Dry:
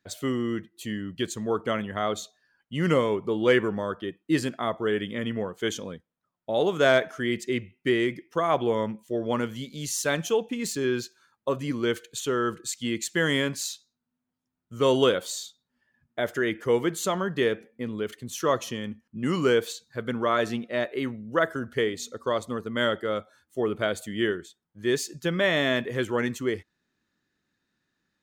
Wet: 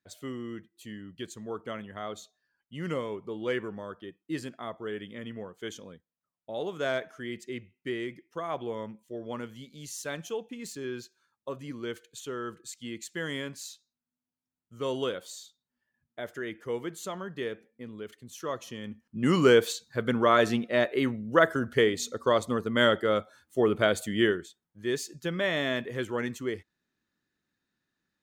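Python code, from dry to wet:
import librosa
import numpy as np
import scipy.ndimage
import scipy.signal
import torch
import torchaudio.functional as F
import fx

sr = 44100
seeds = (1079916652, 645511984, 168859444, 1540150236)

y = fx.gain(x, sr, db=fx.line((18.6, -10.0), (19.29, 2.5), (24.16, 2.5), (24.86, -5.0)))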